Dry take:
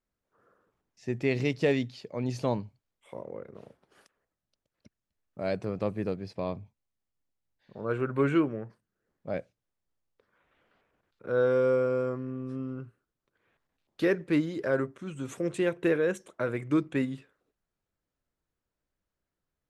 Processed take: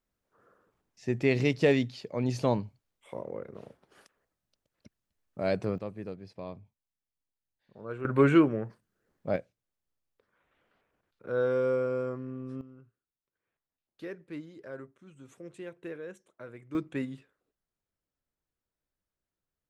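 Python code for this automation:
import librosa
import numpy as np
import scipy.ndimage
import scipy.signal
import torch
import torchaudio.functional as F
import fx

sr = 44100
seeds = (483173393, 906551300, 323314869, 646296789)

y = fx.gain(x, sr, db=fx.steps((0.0, 2.0), (5.78, -8.0), (8.05, 4.0), (9.36, -3.0), (12.61, -15.0), (16.75, -5.0)))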